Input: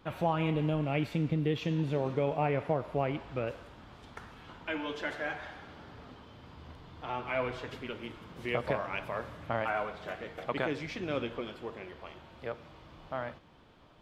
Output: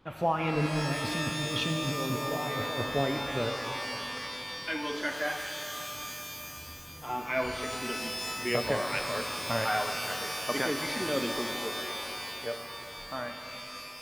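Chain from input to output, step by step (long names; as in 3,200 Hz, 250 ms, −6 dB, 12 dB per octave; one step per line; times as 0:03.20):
noise reduction from a noise print of the clip's start 7 dB
0:00.66–0:02.96: compressor whose output falls as the input rises −39 dBFS, ratio −1
reverb with rising layers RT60 3.2 s, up +12 semitones, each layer −2 dB, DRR 5.5 dB
level +4 dB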